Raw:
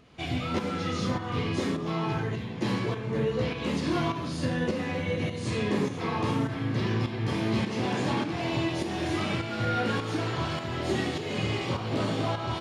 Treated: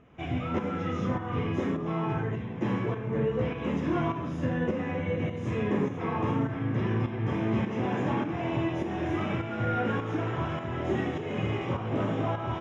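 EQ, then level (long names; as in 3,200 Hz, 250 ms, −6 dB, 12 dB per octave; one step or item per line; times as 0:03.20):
moving average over 10 samples
0.0 dB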